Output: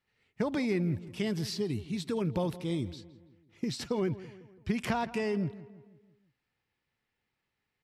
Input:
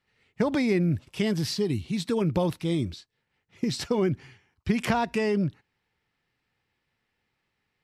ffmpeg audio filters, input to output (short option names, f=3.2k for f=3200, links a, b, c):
-filter_complex "[0:a]asplit=2[a][b];[b]adelay=166,lowpass=f=2.4k:p=1,volume=-16.5dB,asplit=2[c][d];[d]adelay=166,lowpass=f=2.4k:p=1,volume=0.51,asplit=2[e][f];[f]adelay=166,lowpass=f=2.4k:p=1,volume=0.51,asplit=2[g][h];[h]adelay=166,lowpass=f=2.4k:p=1,volume=0.51,asplit=2[i][j];[j]adelay=166,lowpass=f=2.4k:p=1,volume=0.51[k];[a][c][e][g][i][k]amix=inputs=6:normalize=0,volume=-6dB"